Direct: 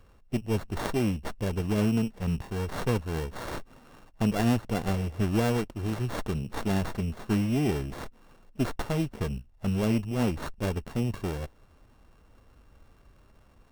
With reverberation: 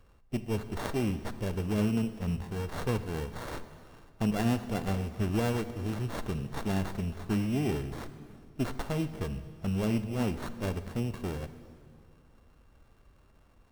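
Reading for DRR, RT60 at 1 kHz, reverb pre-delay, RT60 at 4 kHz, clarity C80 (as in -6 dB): 11.0 dB, 2.0 s, 25 ms, 1.9 s, 13.0 dB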